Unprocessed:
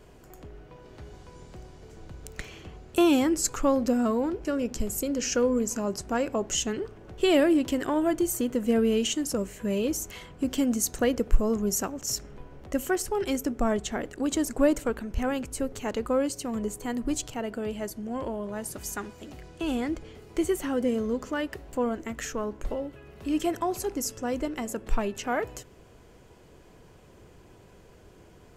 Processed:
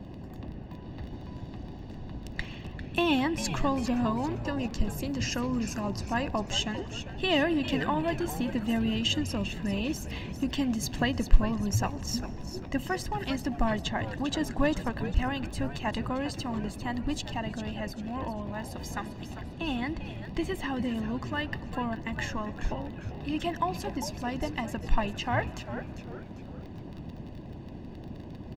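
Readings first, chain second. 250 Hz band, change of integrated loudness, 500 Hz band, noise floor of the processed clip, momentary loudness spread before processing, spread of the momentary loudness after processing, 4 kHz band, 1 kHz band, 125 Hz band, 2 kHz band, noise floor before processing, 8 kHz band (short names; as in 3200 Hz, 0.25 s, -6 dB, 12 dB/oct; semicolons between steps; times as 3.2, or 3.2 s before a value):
-3.0 dB, -3.5 dB, -7.5 dB, -43 dBFS, 16 LU, 15 LU, +2.5 dB, +1.0 dB, +7.5 dB, +2.5 dB, -53 dBFS, -9.5 dB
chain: crackle 20/s -36 dBFS; resonant high shelf 5700 Hz -12 dB, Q 1.5; band noise 64–480 Hz -41 dBFS; comb 1.1 ms, depth 76%; frequency-shifting echo 0.398 s, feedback 40%, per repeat -130 Hz, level -11 dB; digital reverb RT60 4.4 s, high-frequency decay 0.55×, pre-delay 75 ms, DRR 19 dB; harmonic-percussive split harmonic -5 dB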